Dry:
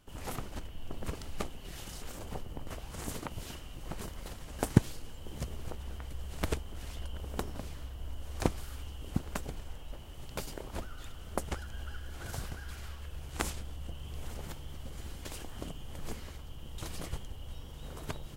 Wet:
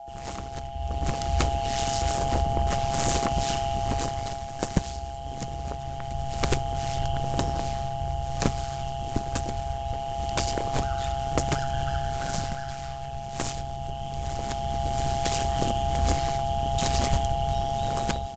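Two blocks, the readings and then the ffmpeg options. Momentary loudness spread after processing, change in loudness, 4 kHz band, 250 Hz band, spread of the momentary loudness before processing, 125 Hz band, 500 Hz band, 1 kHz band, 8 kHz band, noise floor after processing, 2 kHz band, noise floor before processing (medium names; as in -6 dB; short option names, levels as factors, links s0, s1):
9 LU, +12.0 dB, +12.5 dB, +6.5 dB, 9 LU, +10.0 dB, +14.5 dB, +19.5 dB, +11.5 dB, -36 dBFS, +9.5 dB, -47 dBFS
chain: -af "highshelf=f=5200:g=9,aeval=exprs='val(0)+0.0112*sin(2*PI*750*n/s)':c=same,dynaudnorm=f=750:g=3:m=4.47,aeval=exprs='val(0)*sin(2*PI*67*n/s)':c=same,aresample=16000,asoftclip=type=tanh:threshold=0.2,aresample=44100,volume=1.5"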